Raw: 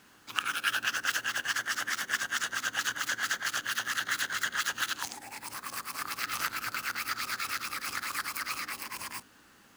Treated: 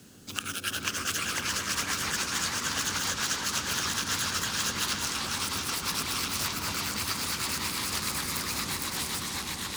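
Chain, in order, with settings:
octave-band graphic EQ 125/250/500/1,000/2,000/8,000 Hz +9/+4/+4/−11/−7/+4 dB
in parallel at −1 dB: downward compressor, threshold −42 dBFS, peak gain reduction 14 dB
on the sum: frequency shifter −18 Hz
echo whose low-pass opens from repeat to repeat 172 ms, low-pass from 400 Hz, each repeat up 2 octaves, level −3 dB
delay with pitch and tempo change per echo 417 ms, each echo −3 semitones, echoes 3

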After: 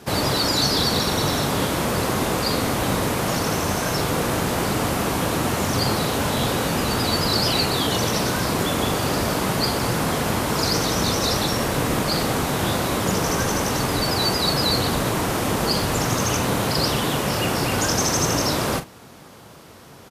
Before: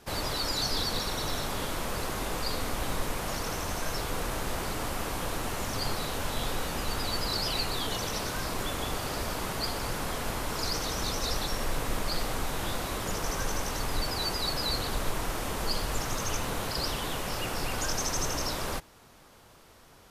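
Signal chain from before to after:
high-pass filter 120 Hz 12 dB per octave
low-shelf EQ 340 Hz +8.5 dB
double-tracking delay 42 ms −11 dB
level +9 dB

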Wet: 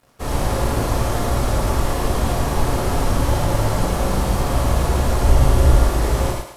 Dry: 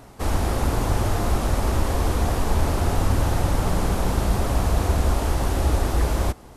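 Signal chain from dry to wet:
0:05.20–0:05.78: low-shelf EQ 130 Hz +10.5 dB
dead-zone distortion −42.5 dBFS
feedback echo with a high-pass in the loop 109 ms, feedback 50%, high-pass 400 Hz, level −8.5 dB
reverb whose tail is shaped and stops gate 140 ms flat, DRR −2.5 dB
level −1 dB

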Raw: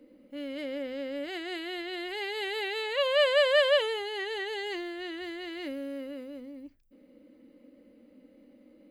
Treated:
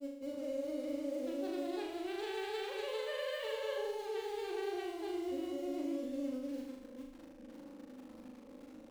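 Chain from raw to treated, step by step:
adaptive Wiener filter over 25 samples
reversed playback
downward compressor 10 to 1, threshold −37 dBFS, peak gain reduction 17.5 dB
reversed playback
brickwall limiter −35.5 dBFS, peak gain reduction 5.5 dB
in parallel at −7.5 dB: wrap-around overflow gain 51.5 dB
on the sum: granular cloud, spray 489 ms, pitch spread up and down by 0 semitones
flutter between parallel walls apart 6.7 metres, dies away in 0.79 s
level +1 dB

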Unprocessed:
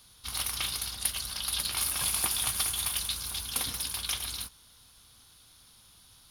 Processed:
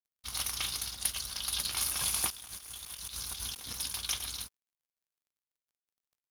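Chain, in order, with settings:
dynamic equaliser 6,200 Hz, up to +6 dB, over −53 dBFS, Q 3.1
0:02.30–0:03.77: compressor whose output falls as the input rises −39 dBFS, ratio −1
dead-zone distortion −48 dBFS
level −2 dB

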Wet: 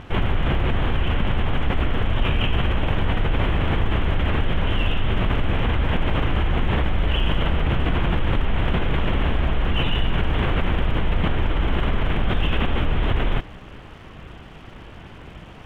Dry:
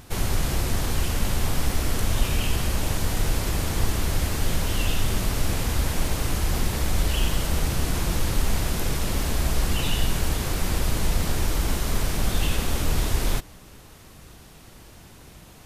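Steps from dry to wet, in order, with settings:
elliptic low-pass filter 3,200 Hz, stop band 40 dB
in parallel at +1.5 dB: compressor whose output falls as the input rises −28 dBFS, ratio −1
on the sum: dead-zone distortion −51 dBFS

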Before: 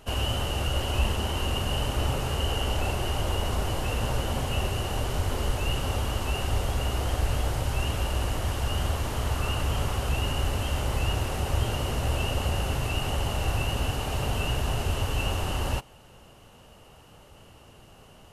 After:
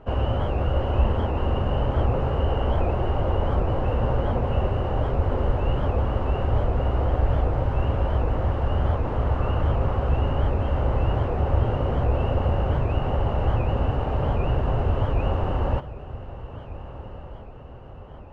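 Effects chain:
low-pass filter 1,200 Hz 12 dB per octave
parametric band 520 Hz +4.5 dB 0.22 octaves
feedback delay with all-pass diffusion 1,492 ms, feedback 45%, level −15 dB
wow of a warped record 78 rpm, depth 160 cents
level +5 dB

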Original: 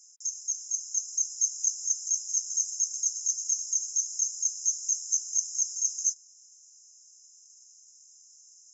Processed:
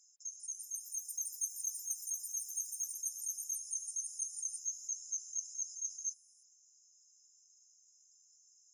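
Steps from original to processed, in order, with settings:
expanding power law on the bin magnitudes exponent 1.8
high shelf with overshoot 4,900 Hz −6.5 dB, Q 3
delay with pitch and tempo change per echo 253 ms, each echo +6 semitones, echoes 3, each echo −6 dB

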